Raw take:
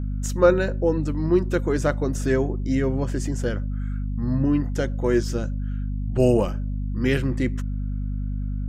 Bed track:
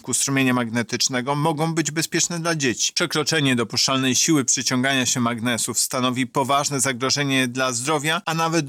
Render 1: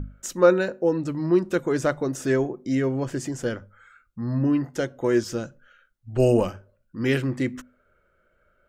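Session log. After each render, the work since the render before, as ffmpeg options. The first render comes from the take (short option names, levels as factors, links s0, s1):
-af "bandreject=f=50:t=h:w=6,bandreject=f=100:t=h:w=6,bandreject=f=150:t=h:w=6,bandreject=f=200:t=h:w=6,bandreject=f=250:t=h:w=6"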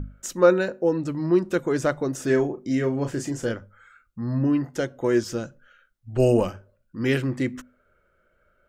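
-filter_complex "[0:a]asettb=1/sr,asplit=3[s0][s1][s2];[s0]atrim=end=2.254[s3];[s1]atrim=start=2.25:end=3.52,asetpts=PTS-STARTPTS,afade=t=in:d=0.004:c=qsin,afade=t=out:st=1.266:d=0.004:c=qsin,asplit=2[s4][s5];[s5]adelay=35,volume=0.398[s6];[s4][s6]amix=inputs=2:normalize=0,atrim=end_sample=56007[s7];[s2]atrim=start=3.516[s8];[s3][s7]acrossfade=d=0.004:c1=hsin:c2=qsin[s9];[s9][s8]acrossfade=d=0.004:c1=qsin:c2=hsin"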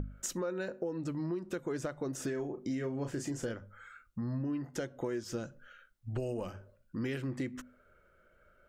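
-af "alimiter=limit=0.15:level=0:latency=1:release=216,acompressor=threshold=0.0178:ratio=4"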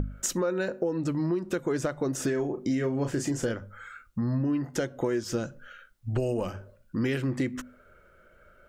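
-af "volume=2.51"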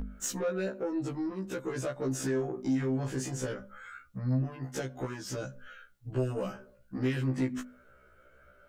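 -af "asoftclip=type=tanh:threshold=0.0668,afftfilt=real='re*1.73*eq(mod(b,3),0)':imag='im*1.73*eq(mod(b,3),0)':win_size=2048:overlap=0.75"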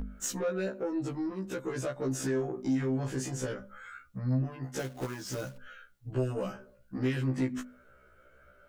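-filter_complex "[0:a]asettb=1/sr,asplit=3[s0][s1][s2];[s0]atrim=end=4.794[s3];[s1]atrim=start=4.79:end=5.58,asetpts=PTS-STARTPTS,afade=t=in:d=0.004:c=qsin,afade=t=out:st=0.786:d=0.004:c=qsin,acrusher=bits=3:mode=log:mix=0:aa=0.000001[s4];[s2]atrim=start=5.576[s5];[s3][s4]acrossfade=d=0.004:c1=hsin:c2=qsin[s6];[s6][s5]acrossfade=d=0.004:c1=qsin:c2=hsin"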